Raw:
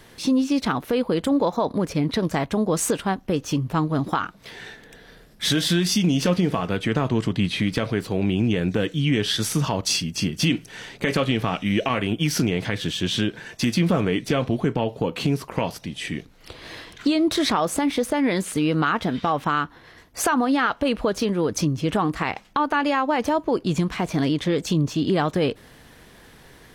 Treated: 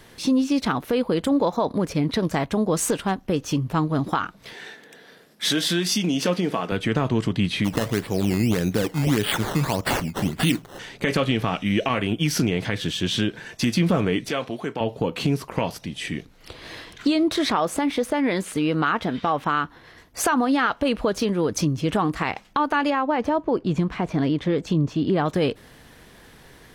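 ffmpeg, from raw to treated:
-filter_complex "[0:a]asettb=1/sr,asplit=3[a][b][c];[a]atrim=end=2.754[d];[b]atrim=start=2.75:end=3.29,asetpts=PTS-STARTPTS,afade=t=in:d=0.004:c=qsin,afade=t=out:st=0.536:d=0.004:c=qsin,aeval=exprs='clip(val(0),-1,0.119)':c=same[e];[c]atrim=start=3.286[f];[d][e]acrossfade=d=0.004:c1=hsin:c2=qsin[g];[g][f]acrossfade=d=0.004:c1=qsin:c2=hsin,asettb=1/sr,asplit=3[h][i][j];[h]atrim=end=4.534[k];[i]atrim=start=4.53:end=6.72,asetpts=PTS-STARTPTS,afade=t=in:d=0.004:c=qsin,afade=t=out:st=2.186:d=0.004:c=qsin,highpass=220[l];[j]atrim=start=6.716[m];[k][l]acrossfade=d=0.004:c1=hsin:c2=qsin[n];[n][m]acrossfade=d=0.004:c1=qsin:c2=hsin,asplit=3[o][p][q];[o]afade=t=out:st=7.64:d=0.02[r];[p]acrusher=samples=13:mix=1:aa=0.000001:lfo=1:lforange=13:lforate=1.7,afade=t=in:st=7.64:d=0.02,afade=t=out:st=10.78:d=0.02[s];[q]afade=t=in:st=10.78:d=0.02[t];[r][s][t]amix=inputs=3:normalize=0,asettb=1/sr,asplit=3[u][v][w];[u]atrim=end=14.294[x];[v]atrim=start=14.29:end=14.81,asetpts=PTS-STARTPTS,afade=t=in:d=0.004:c=qsin,afade=t=out:st=0.516:d=0.004:c=qsin,highpass=f=590:p=1[y];[w]atrim=start=14.806[z];[x][y]acrossfade=d=0.004:c1=hsin:c2=qsin[aa];[aa][z]acrossfade=d=0.004:c1=qsin:c2=hsin,asettb=1/sr,asplit=3[ab][ac][ad];[ab]atrim=end=17.234[ae];[ac]atrim=start=17.23:end=19.64,asetpts=PTS-STARTPTS,afade=t=in:d=0.004:c=qsin,afade=t=out:st=2.406:d=0.004:c=qsin,bass=f=250:g=-3,treble=f=4k:g=-4[af];[ad]atrim=start=19.636[ag];[ae][af]acrossfade=d=0.004:c1=hsin:c2=qsin[ah];[ah][ag]acrossfade=d=0.004:c1=qsin:c2=hsin,asettb=1/sr,asplit=3[ai][aj][ak];[ai]atrim=end=22.904[al];[aj]atrim=start=22.9:end=25.26,asetpts=PTS-STARTPTS,afade=t=in:d=0.004:c=qsin,afade=t=out:st=2.356:d=0.004:c=qsin,lowpass=f=1.9k:p=1[am];[ak]atrim=start=25.256[an];[al][am]acrossfade=d=0.004:c1=hsin:c2=qsin[ao];[ao][an]acrossfade=d=0.004:c1=qsin:c2=hsin"

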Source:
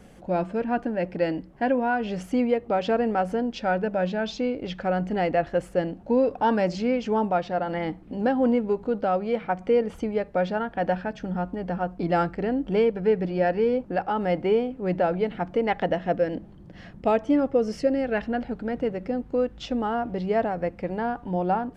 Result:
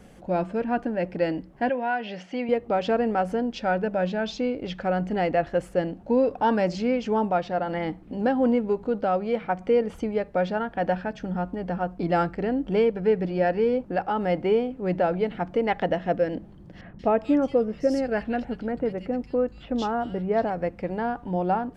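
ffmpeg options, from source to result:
-filter_complex "[0:a]asettb=1/sr,asplit=3[a][b][c];[a]atrim=end=1.694[d];[b]atrim=start=1.69:end=2.49,asetpts=PTS-STARTPTS,afade=t=in:d=0.004:c=qsin,afade=t=out:st=0.796:d=0.004:c=qsin,highpass=270,equalizer=f=280:t=q:w=4:g=-7,equalizer=f=430:t=q:w=4:g=-7,equalizer=f=1.2k:t=q:w=4:g=-7,equalizer=f=1.9k:t=q:w=4:g=4,equalizer=f=2.9k:t=q:w=4:g=3,lowpass=f=5.3k:w=0.5412,lowpass=f=5.3k:w=1.3066[e];[c]atrim=start=2.486[f];[d][e]acrossfade=d=0.004:c1=hsin:c2=qsin[g];[g][f]acrossfade=d=0.004:c1=qsin:c2=hsin,asettb=1/sr,asplit=3[h][i][j];[h]atrim=end=16.814[k];[i]atrim=start=16.81:end=20.5,asetpts=PTS-STARTPTS,afade=t=in:d=0.004:c=qsin,afade=t=out:st=3.686:d=0.004:c=qsin,acrossover=split=2500[l][m];[m]adelay=180[n];[l][n]amix=inputs=2:normalize=0,atrim=end_sample=162729[o];[j]atrim=start=20.496[p];[k][o]acrossfade=d=0.004:c1=hsin:c2=qsin[q];[q][p]acrossfade=d=0.004:c1=qsin:c2=hsin"

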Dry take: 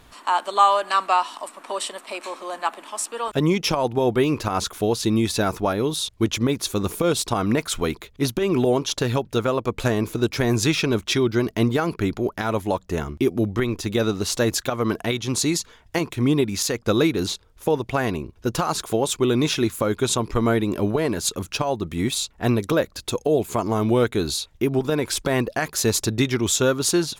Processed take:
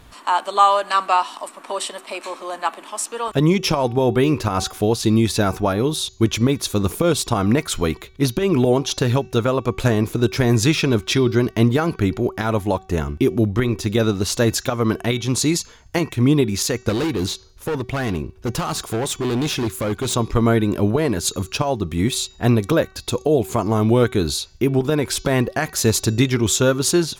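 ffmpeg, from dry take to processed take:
-filter_complex "[0:a]asettb=1/sr,asplit=3[a][b][c];[a]atrim=end=16.894[d];[b]atrim=start=16.89:end=20.14,asetpts=PTS-STARTPTS,afade=t=in:d=0.004:c=qsin,afade=t=out:st=3.246:d=0.004:c=qsin,asoftclip=type=hard:threshold=-22dB[e];[c]atrim=start=20.136[f];[d][e]acrossfade=d=0.004:c1=hsin:c2=qsin[g];[g][f]acrossfade=d=0.004:c1=qsin:c2=hsin,equalizer=f=71:t=o:w=2.9:g=5,bandreject=f=379.6:t=h:w=4,bandreject=f=759.2:t=h:w=4,bandreject=f=1.1388k:t=h:w=4,bandreject=f=1.5184k:t=h:w=4,bandreject=f=1.898k:t=h:w=4,bandreject=f=2.2776k:t=h:w=4,bandreject=f=2.6572k:t=h:w=4,bandreject=f=3.0368k:t=h:w=4,bandreject=f=3.4164k:t=h:w=4,bandreject=f=3.796k:t=h:w=4,bandreject=f=4.1756k:t=h:w=4,bandreject=f=4.5552k:t=h:w=4,bandreject=f=4.9348k:t=h:w=4,bandreject=f=5.3144k:t=h:w=4,bandreject=f=5.694k:t=h:w=4,bandreject=f=6.0736k:t=h:w=4,bandreject=f=6.4532k:t=h:w=4,bandreject=f=6.8328k:t=h:w=4,bandreject=f=7.2124k:t=h:w=4,volume=2dB"

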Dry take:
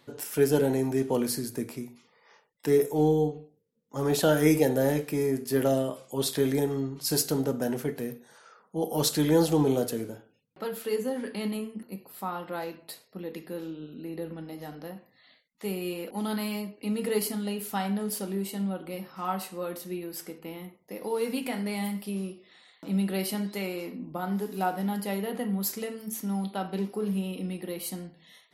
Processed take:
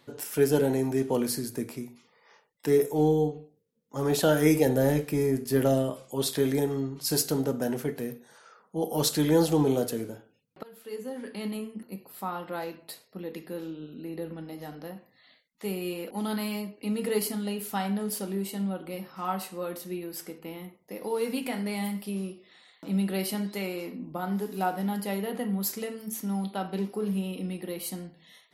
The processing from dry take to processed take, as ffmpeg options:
-filter_complex "[0:a]asettb=1/sr,asplit=3[a][b][c];[a]atrim=end=4.664[d];[b]atrim=start=4.66:end=6.11,asetpts=PTS-STARTPTS,afade=t=in:d=0.004:c=qsin,afade=t=out:st=1.446:d=0.004:c=qsin,lowshelf=f=110:g=10[e];[c]atrim=start=6.106[f];[d][e]acrossfade=d=0.004:c1=hsin:c2=qsin[g];[g][f]acrossfade=d=0.004:c1=qsin:c2=hsin,asplit=2[h][i];[h]atrim=end=10.63,asetpts=PTS-STARTPTS,afade=t=out:st=10.626:d=0.004:c=hsin:silence=0.0891251[j];[i]atrim=start=10.63,asetpts=PTS-STARTPTS,afade=t=in:d=1.56:c=qsin:silence=0.0891251[k];[j][k]concat=n=2:v=0:a=1"

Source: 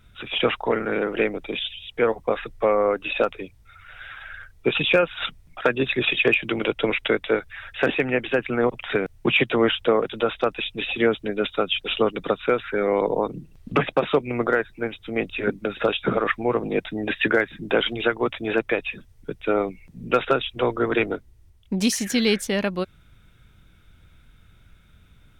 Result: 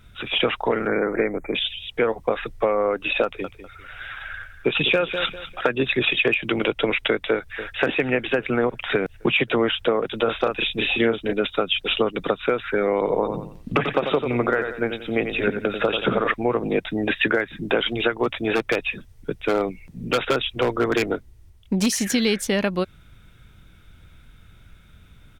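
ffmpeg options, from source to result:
-filter_complex "[0:a]asettb=1/sr,asplit=3[a][b][c];[a]atrim=end=0.874[d];[b]atrim=start=0.87:end=1.55,asetpts=PTS-STARTPTS,afade=t=in:d=0.004:c=qsin,afade=t=out:st=0.676:d=0.004:c=qsin,asuperstop=centerf=3900:order=20:qfactor=0.97[e];[c]atrim=start=1.546[f];[d][e]acrossfade=d=0.004:c1=hsin:c2=qsin[g];[g][f]acrossfade=d=0.004:c1=qsin:c2=hsin,asettb=1/sr,asplit=3[h][i][j];[h]atrim=end=3.244[k];[i]atrim=start=3.24:end=5.7,asetpts=PTS-STARTPTS,afade=t=in:d=0.004:c=qsin,afade=t=out:st=2.456:d=0.004:c=qsin,aecho=1:1:199|398|597:0.211|0.0571|0.0154,atrim=end_sample=108486[l];[j]atrim=start=5.696[m];[k][l]acrossfade=d=0.004:c1=hsin:c2=qsin[n];[n][m]acrossfade=d=0.004:c1=qsin:c2=hsin,asplit=2[o][p];[p]afade=t=in:st=7.31:d=0.01,afade=t=out:st=7.81:d=0.01,aecho=0:1:270|540|810|1080|1350|1620|1890|2160:0.141254|0.0988776|0.0692143|0.04845|0.033915|0.0237405|0.0166184|0.0116329[q];[o][q]amix=inputs=2:normalize=0,asettb=1/sr,asplit=3[r][s][t];[r]atrim=end=10.244[u];[s]atrim=start=10.24:end=11.33,asetpts=PTS-STARTPTS,afade=t=in:d=0.004:c=qsin,afade=t=out:st=1.086:d=0.004:c=qsin,asplit=2[v][w];[w]adelay=35,volume=-3.5dB[x];[v][x]amix=inputs=2:normalize=0,atrim=end_sample=48069[y];[t]atrim=start=11.326[z];[u][y]acrossfade=d=0.004:c1=hsin:c2=qsin[aa];[aa][z]acrossfade=d=0.004:c1=qsin:c2=hsin,asettb=1/sr,asplit=3[ab][ac][ad];[ab]atrim=end=12.954[ae];[ac]atrim=start=12.95:end=16.34,asetpts=PTS-STARTPTS,afade=t=in:d=0.004:c=qsin,afade=t=out:st=3.386:d=0.004:c=qsin,aecho=1:1:90|180|270|360:0.355|0.117|0.0386|0.0128,atrim=end_sample=149499[af];[ad]atrim=start=16.336[ag];[ae][af]acrossfade=d=0.004:c1=hsin:c2=qsin[ah];[ah][ag]acrossfade=d=0.004:c1=qsin:c2=hsin,asplit=3[ai][aj][ak];[ai]afade=t=out:st=18.23:d=0.02[al];[aj]aeval=exprs='0.2*(abs(mod(val(0)/0.2+3,4)-2)-1)':c=same,afade=t=in:st=18.23:d=0.02,afade=t=out:st=21.85:d=0.02[am];[ak]afade=t=in:st=21.85:d=0.02[an];[al][am][an]amix=inputs=3:normalize=0,acompressor=threshold=-21dB:ratio=4,volume=4dB"

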